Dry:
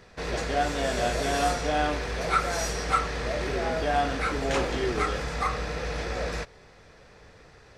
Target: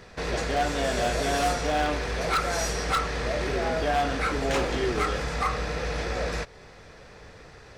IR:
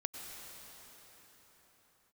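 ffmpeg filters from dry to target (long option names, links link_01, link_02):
-filter_complex "[0:a]asplit=2[link_01][link_02];[link_02]acompressor=threshold=-39dB:ratio=6,volume=-3dB[link_03];[link_01][link_03]amix=inputs=2:normalize=0,aeval=exprs='0.133*(abs(mod(val(0)/0.133+3,4)-2)-1)':channel_layout=same"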